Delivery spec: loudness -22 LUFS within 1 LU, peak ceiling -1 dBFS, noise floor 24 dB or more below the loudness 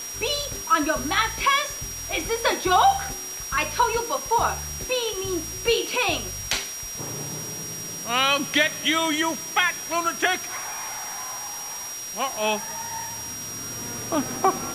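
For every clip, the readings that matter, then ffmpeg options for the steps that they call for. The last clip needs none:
steady tone 5.7 kHz; tone level -33 dBFS; noise floor -34 dBFS; noise floor target -49 dBFS; loudness -24.5 LUFS; peak level -6.0 dBFS; loudness target -22.0 LUFS
-> -af "bandreject=f=5700:w=30"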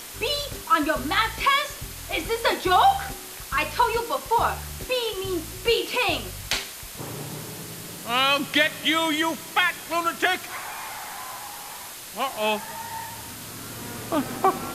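steady tone not found; noise floor -39 dBFS; noise floor target -49 dBFS
-> -af "afftdn=nr=10:nf=-39"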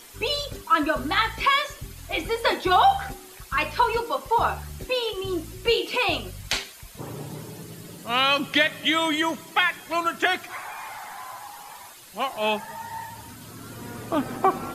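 noise floor -45 dBFS; noise floor target -48 dBFS
-> -af "afftdn=nr=6:nf=-45"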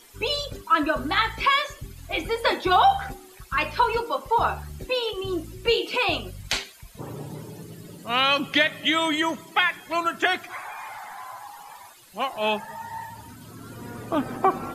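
noise floor -48 dBFS; loudness -24.0 LUFS; peak level -6.0 dBFS; loudness target -22.0 LUFS
-> -af "volume=1.26"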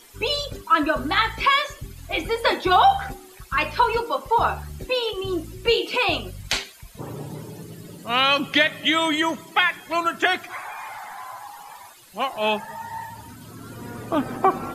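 loudness -22.0 LUFS; peak level -4.0 dBFS; noise floor -46 dBFS

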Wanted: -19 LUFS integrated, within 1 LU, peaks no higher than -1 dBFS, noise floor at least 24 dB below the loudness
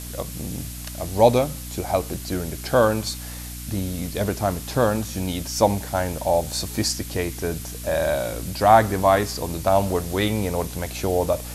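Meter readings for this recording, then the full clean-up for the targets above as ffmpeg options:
hum 60 Hz; highest harmonic 300 Hz; hum level -34 dBFS; noise floor -34 dBFS; noise floor target -47 dBFS; loudness -23.0 LUFS; peak level -2.5 dBFS; loudness target -19.0 LUFS
-> -af "bandreject=f=60:t=h:w=4,bandreject=f=120:t=h:w=4,bandreject=f=180:t=h:w=4,bandreject=f=240:t=h:w=4,bandreject=f=300:t=h:w=4"
-af "afftdn=nr=13:nf=-34"
-af "volume=1.58,alimiter=limit=0.891:level=0:latency=1"

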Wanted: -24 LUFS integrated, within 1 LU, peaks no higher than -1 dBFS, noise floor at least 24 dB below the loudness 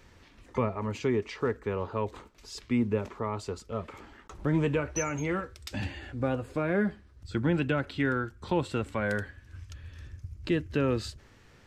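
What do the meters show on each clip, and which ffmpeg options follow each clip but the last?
loudness -31.0 LUFS; peak level -15.5 dBFS; loudness target -24.0 LUFS
-> -af "volume=2.24"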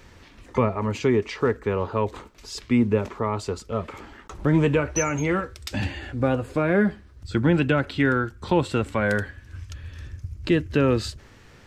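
loudness -24.0 LUFS; peak level -8.5 dBFS; noise floor -50 dBFS

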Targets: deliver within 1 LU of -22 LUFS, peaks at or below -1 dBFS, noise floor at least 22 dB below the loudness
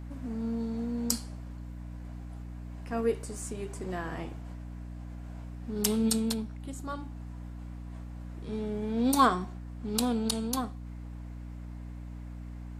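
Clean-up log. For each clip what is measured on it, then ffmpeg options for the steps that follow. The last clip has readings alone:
hum 60 Hz; highest harmonic 300 Hz; hum level -39 dBFS; loudness -33.0 LUFS; peak level -7.5 dBFS; loudness target -22.0 LUFS
-> -af "bandreject=f=60:t=h:w=4,bandreject=f=120:t=h:w=4,bandreject=f=180:t=h:w=4,bandreject=f=240:t=h:w=4,bandreject=f=300:t=h:w=4"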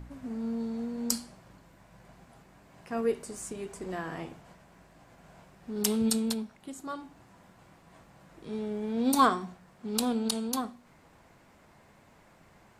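hum not found; loudness -31.5 LUFS; peak level -7.5 dBFS; loudness target -22.0 LUFS
-> -af "volume=2.99,alimiter=limit=0.891:level=0:latency=1"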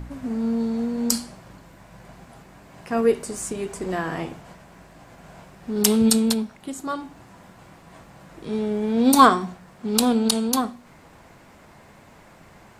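loudness -22.0 LUFS; peak level -1.0 dBFS; noise floor -50 dBFS

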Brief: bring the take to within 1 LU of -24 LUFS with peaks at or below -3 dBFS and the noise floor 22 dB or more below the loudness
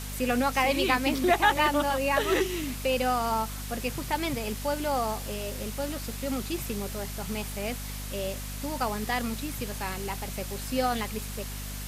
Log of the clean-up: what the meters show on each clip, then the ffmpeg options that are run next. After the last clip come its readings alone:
hum 50 Hz; highest harmonic 250 Hz; hum level -35 dBFS; noise floor -37 dBFS; noise floor target -51 dBFS; loudness -29.0 LUFS; peak level -9.5 dBFS; loudness target -24.0 LUFS
-> -af "bandreject=f=50:t=h:w=4,bandreject=f=100:t=h:w=4,bandreject=f=150:t=h:w=4,bandreject=f=200:t=h:w=4,bandreject=f=250:t=h:w=4"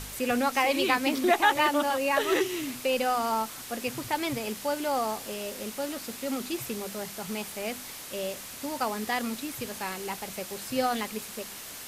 hum not found; noise floor -42 dBFS; noise floor target -52 dBFS
-> -af "afftdn=nr=10:nf=-42"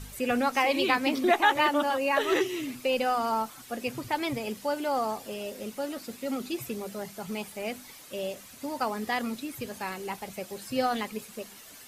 noise floor -49 dBFS; noise floor target -52 dBFS
-> -af "afftdn=nr=6:nf=-49"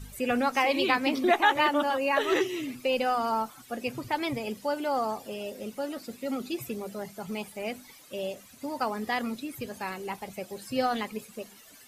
noise floor -53 dBFS; loudness -29.5 LUFS; peak level -9.5 dBFS; loudness target -24.0 LUFS
-> -af "volume=1.88"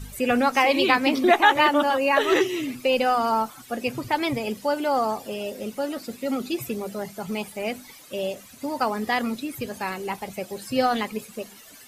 loudness -24.0 LUFS; peak level -4.0 dBFS; noise floor -47 dBFS

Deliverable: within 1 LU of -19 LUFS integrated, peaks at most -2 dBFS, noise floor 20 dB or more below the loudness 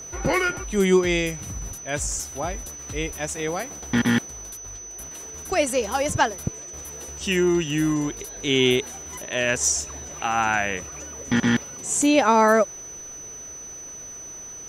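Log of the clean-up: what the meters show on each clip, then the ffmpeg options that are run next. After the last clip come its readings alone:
steady tone 6 kHz; tone level -36 dBFS; loudness -23.0 LUFS; peak level -7.0 dBFS; loudness target -19.0 LUFS
-> -af "bandreject=f=6000:w=30"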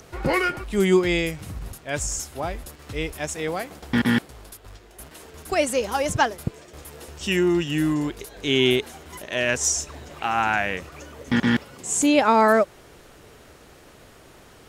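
steady tone not found; loudness -23.0 LUFS; peak level -7.0 dBFS; loudness target -19.0 LUFS
-> -af "volume=1.58"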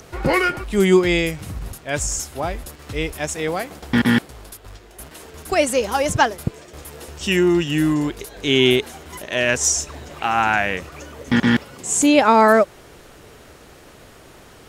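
loudness -19.0 LUFS; peak level -3.0 dBFS; noise floor -46 dBFS

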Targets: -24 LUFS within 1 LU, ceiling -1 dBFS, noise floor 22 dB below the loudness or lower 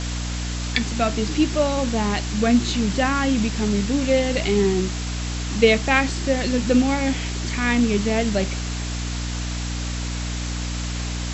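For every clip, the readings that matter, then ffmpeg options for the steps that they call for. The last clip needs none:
hum 60 Hz; highest harmonic 300 Hz; hum level -25 dBFS; noise floor -27 dBFS; noise floor target -44 dBFS; loudness -22.0 LUFS; peak level -2.0 dBFS; loudness target -24.0 LUFS
-> -af "bandreject=f=60:t=h:w=4,bandreject=f=120:t=h:w=4,bandreject=f=180:t=h:w=4,bandreject=f=240:t=h:w=4,bandreject=f=300:t=h:w=4"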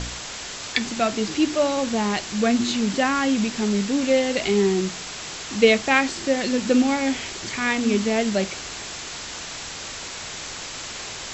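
hum not found; noise floor -35 dBFS; noise floor target -45 dBFS
-> -af "afftdn=nr=10:nf=-35"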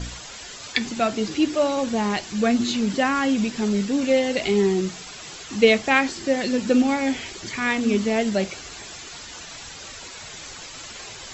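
noise floor -39 dBFS; noise floor target -44 dBFS
-> -af "afftdn=nr=6:nf=-39"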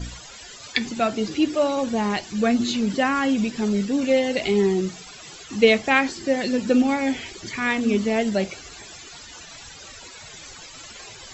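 noise floor -42 dBFS; noise floor target -44 dBFS
-> -af "afftdn=nr=6:nf=-42"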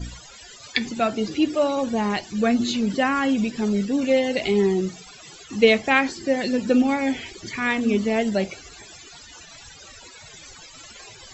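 noise floor -45 dBFS; loudness -22.5 LUFS; peak level -3.0 dBFS; loudness target -24.0 LUFS
-> -af "volume=0.841"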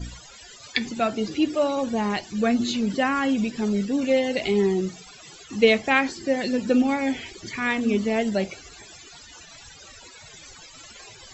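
loudness -24.0 LUFS; peak level -4.5 dBFS; noise floor -46 dBFS

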